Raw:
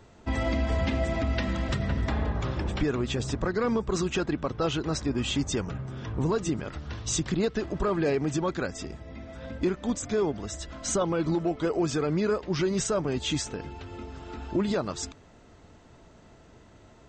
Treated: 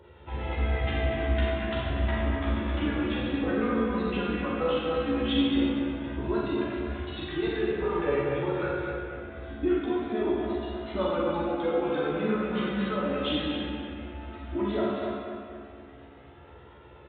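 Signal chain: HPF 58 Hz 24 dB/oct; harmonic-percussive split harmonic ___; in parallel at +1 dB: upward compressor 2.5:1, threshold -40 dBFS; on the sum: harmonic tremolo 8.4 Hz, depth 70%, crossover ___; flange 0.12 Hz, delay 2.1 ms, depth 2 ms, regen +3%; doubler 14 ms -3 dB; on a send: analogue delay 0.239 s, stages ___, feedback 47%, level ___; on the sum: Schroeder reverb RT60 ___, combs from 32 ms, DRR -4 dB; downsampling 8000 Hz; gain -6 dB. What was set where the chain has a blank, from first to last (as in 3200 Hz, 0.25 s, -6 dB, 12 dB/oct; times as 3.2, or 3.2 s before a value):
-4 dB, 660 Hz, 4096, -5.5 dB, 1.3 s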